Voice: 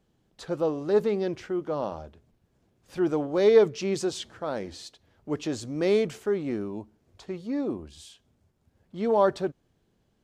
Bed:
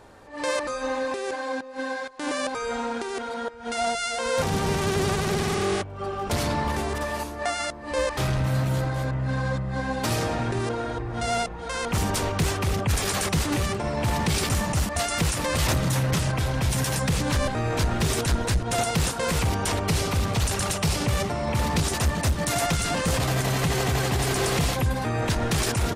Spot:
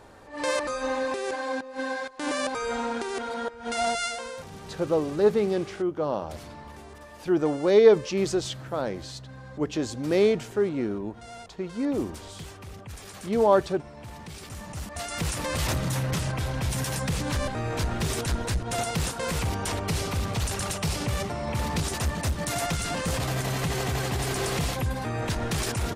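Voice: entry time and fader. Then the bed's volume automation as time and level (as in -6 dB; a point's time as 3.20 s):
4.30 s, +2.0 dB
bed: 4.05 s -0.5 dB
4.43 s -17.5 dB
14.40 s -17.5 dB
15.32 s -4 dB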